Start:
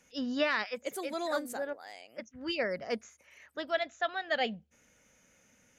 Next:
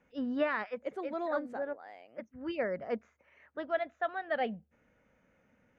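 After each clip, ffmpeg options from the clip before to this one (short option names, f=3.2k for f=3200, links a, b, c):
-af "lowpass=1.6k"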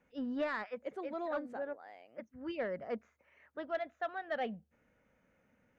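-af "asoftclip=type=tanh:threshold=-23.5dB,volume=-3dB"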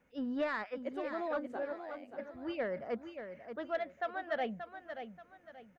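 -af "aecho=1:1:581|1162|1743|2324:0.355|0.117|0.0386|0.0128,volume=1dB"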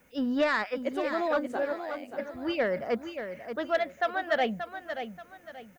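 -af "crystalizer=i=2.5:c=0,volume=8dB"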